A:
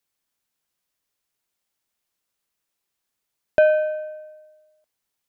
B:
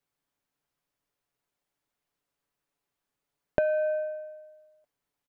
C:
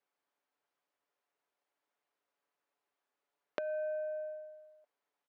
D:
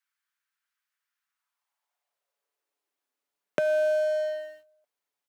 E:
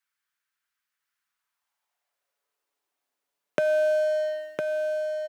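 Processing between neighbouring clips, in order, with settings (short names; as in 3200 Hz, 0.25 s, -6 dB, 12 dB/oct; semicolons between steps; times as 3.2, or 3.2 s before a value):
comb 7 ms, depth 44%; compressor 10:1, threshold -23 dBFS, peak gain reduction 11.5 dB; high shelf 2200 Hz -11.5 dB; gain +1.5 dB
LPF 1800 Hz 6 dB/oct; compressor 6:1, threshold -37 dBFS, peak gain reduction 15.5 dB; HPF 430 Hz 12 dB/oct; gain +2.5 dB
high shelf 2300 Hz +11 dB; sample leveller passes 3; high-pass sweep 1500 Hz -> 96 Hz, 1.19–4.1
echo 1.007 s -5 dB; gain +1.5 dB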